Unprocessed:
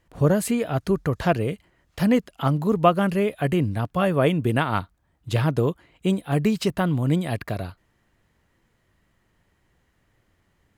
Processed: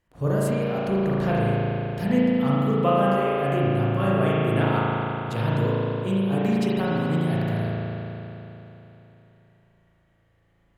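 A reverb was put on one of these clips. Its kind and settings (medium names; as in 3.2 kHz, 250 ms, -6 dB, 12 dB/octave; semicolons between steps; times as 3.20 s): spring tank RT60 3.4 s, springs 36 ms, chirp 50 ms, DRR -7.5 dB; trim -8.5 dB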